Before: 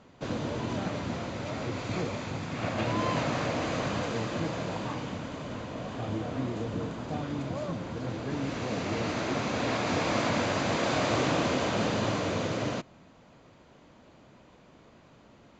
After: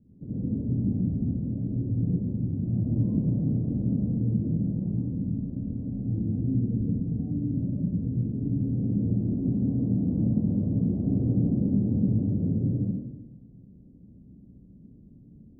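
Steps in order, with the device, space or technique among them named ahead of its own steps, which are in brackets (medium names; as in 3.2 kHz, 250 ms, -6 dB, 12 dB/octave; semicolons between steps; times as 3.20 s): next room (low-pass 270 Hz 24 dB/octave; reverberation RT60 1.1 s, pre-delay 60 ms, DRR -8.5 dB)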